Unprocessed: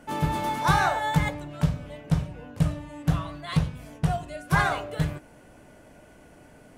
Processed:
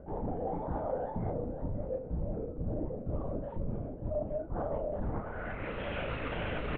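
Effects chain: trilling pitch shifter -2.5 st, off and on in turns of 0.263 s; recorder AGC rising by 13 dB/s; low-pass sweep 510 Hz -> 3000 Hz, 4.82–5.74; LPC vocoder at 8 kHz whisper; in parallel at -1 dB: limiter -24 dBFS, peak gain reduction 15 dB; on the sum: notch 370 Hz, Q 12; reverse; compressor 12:1, threshold -32 dBFS, peak gain reduction 19 dB; reverse; doubler 35 ms -8 dB; warbling echo 0.54 s, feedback 36%, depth 122 cents, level -13 dB

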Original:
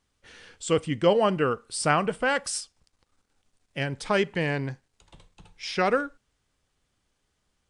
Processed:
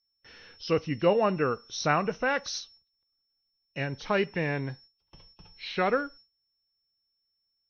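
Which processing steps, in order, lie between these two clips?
nonlinear frequency compression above 2400 Hz 1.5:1; whine 5400 Hz -52 dBFS; gate with hold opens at -43 dBFS; gain -2.5 dB

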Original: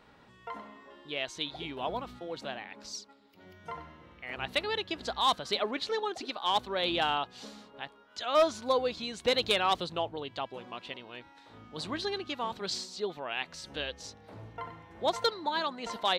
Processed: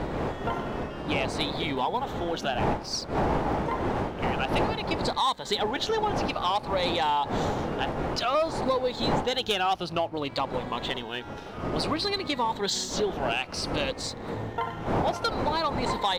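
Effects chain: moving spectral ripple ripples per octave 1, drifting -0.56 Hz, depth 9 dB; wind noise 610 Hz -34 dBFS; dynamic EQ 840 Hz, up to +8 dB, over -47 dBFS, Q 5.3; compressor 4:1, threshold -35 dBFS, peak gain reduction 17 dB; sample leveller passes 1; gain +7 dB

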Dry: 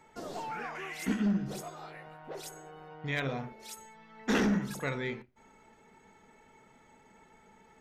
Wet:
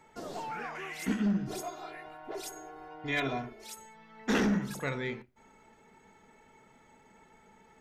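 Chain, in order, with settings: 1.47–3.64 comb 2.9 ms, depth 88%

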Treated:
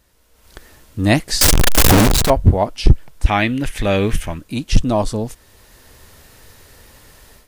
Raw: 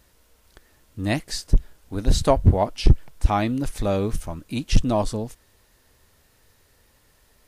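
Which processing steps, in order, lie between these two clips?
1.41–2.3 infinite clipping; 3.26–4.38 band shelf 2300 Hz +10.5 dB 1.3 oct; AGC gain up to 15.5 dB; gain -1 dB

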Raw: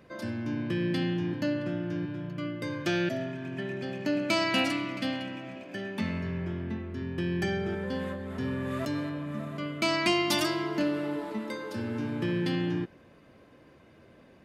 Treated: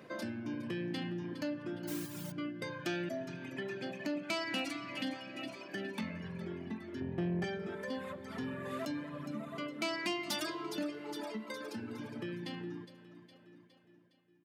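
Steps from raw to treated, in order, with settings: ending faded out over 4.36 s; feedback echo 0.412 s, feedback 50%, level -12 dB; 1.87–2.32 modulation noise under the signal 11 dB; reverb removal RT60 1.7 s; reverb RT60 0.95 s, pre-delay 19 ms, DRR 19 dB; compressor 2:1, threshold -42 dBFS, peak gain reduction 11 dB; 7–7.44 tilt -3 dB/oct; soft clip -29.5 dBFS, distortion -18 dB; HPF 160 Hz 12 dB/oct; gain +3 dB

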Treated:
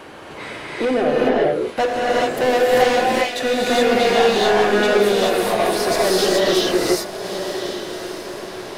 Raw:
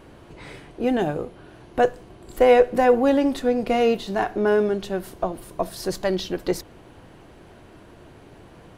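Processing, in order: 0.85–1.26 formant sharpening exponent 2; overdrive pedal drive 25 dB, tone 6300 Hz, clips at -4.5 dBFS; 2.84–3.4 steep high-pass 2000 Hz; on a send: diffused feedback echo 1.168 s, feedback 41%, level -8.5 dB; on the sum: gate -22 dBFS, range -8 dB; non-linear reverb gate 0.45 s rising, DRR -6.5 dB; three-band squash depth 40%; gain -8.5 dB

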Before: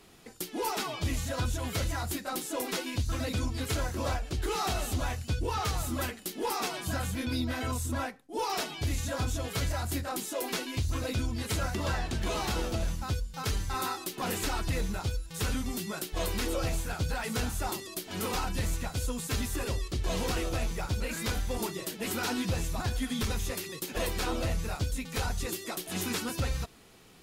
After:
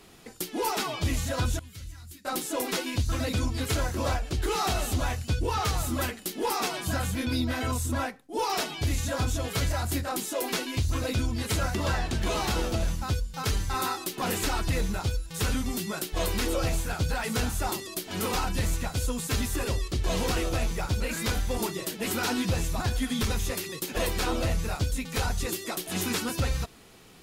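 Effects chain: 1.59–2.25 passive tone stack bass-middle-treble 6-0-2; gain +3.5 dB

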